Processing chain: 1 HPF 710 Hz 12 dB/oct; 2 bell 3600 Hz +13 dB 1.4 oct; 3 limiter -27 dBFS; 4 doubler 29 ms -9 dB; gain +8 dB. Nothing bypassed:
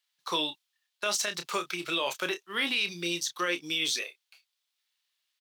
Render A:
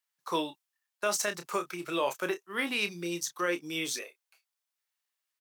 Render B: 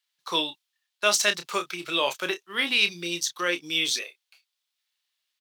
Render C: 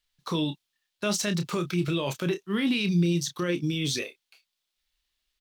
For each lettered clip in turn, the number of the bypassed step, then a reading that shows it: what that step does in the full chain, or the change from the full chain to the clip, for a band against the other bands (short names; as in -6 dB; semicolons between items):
2, 4 kHz band -8.5 dB; 3, mean gain reduction 2.0 dB; 1, 125 Hz band +23.0 dB